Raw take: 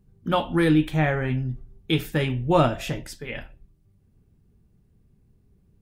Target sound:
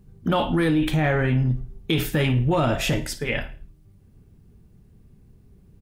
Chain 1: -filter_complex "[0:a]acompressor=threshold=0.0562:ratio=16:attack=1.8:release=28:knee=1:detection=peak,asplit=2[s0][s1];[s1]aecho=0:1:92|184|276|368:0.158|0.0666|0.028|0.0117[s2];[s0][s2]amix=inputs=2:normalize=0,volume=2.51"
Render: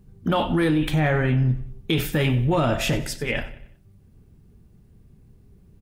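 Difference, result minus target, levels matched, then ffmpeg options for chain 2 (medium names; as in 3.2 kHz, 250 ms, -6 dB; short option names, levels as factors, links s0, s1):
echo 37 ms late
-filter_complex "[0:a]acompressor=threshold=0.0562:ratio=16:attack=1.8:release=28:knee=1:detection=peak,asplit=2[s0][s1];[s1]aecho=0:1:55|110|165|220:0.158|0.0666|0.028|0.0117[s2];[s0][s2]amix=inputs=2:normalize=0,volume=2.51"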